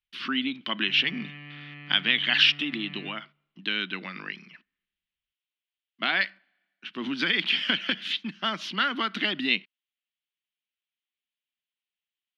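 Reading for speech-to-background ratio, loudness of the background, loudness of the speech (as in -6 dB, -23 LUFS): 17.5 dB, -43.5 LUFS, -26.0 LUFS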